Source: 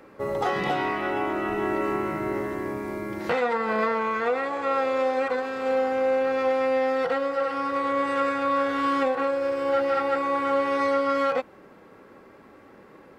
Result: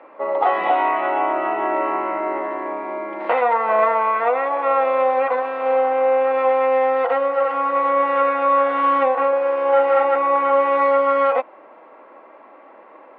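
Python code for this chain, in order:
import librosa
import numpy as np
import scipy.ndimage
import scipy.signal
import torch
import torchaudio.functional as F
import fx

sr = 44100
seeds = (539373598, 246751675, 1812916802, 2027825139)

y = fx.cabinet(x, sr, low_hz=330.0, low_slope=24, high_hz=2700.0, hz=(410.0, 650.0, 980.0, 1600.0), db=(-9, 8, 7, -5))
y = fx.room_flutter(y, sr, wall_m=6.6, rt60_s=0.31, at=(9.29, 10.05))
y = y * 10.0 ** (5.5 / 20.0)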